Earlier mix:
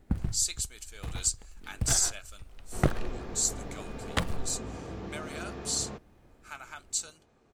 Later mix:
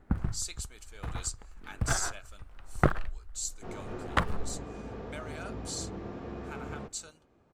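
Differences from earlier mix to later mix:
first sound: add bell 1300 Hz +9.5 dB 1.3 oct; second sound: entry +0.90 s; master: add high shelf 2600 Hz -9 dB

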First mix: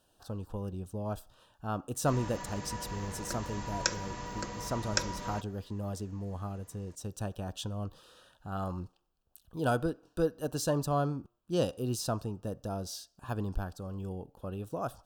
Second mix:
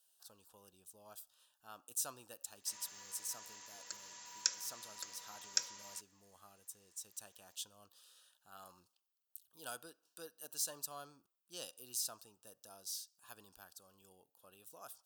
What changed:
background: entry +0.60 s; master: add differentiator

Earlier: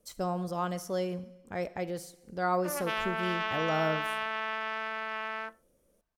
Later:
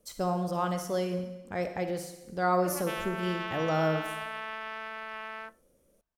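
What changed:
speech: send +11.0 dB; background -4.0 dB

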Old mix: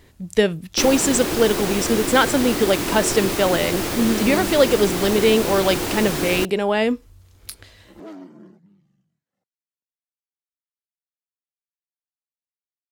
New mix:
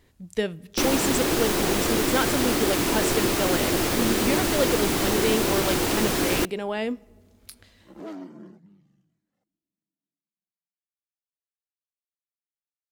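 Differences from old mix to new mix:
speech -10.5 dB; reverb: on

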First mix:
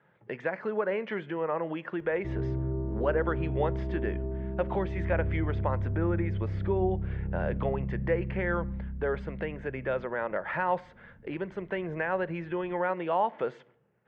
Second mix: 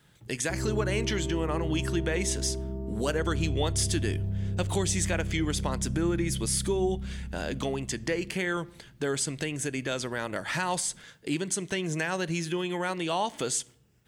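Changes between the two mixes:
speech: remove speaker cabinet 200–2000 Hz, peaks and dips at 280 Hz -9 dB, 540 Hz +6 dB, 900 Hz +3 dB; background: entry -1.75 s

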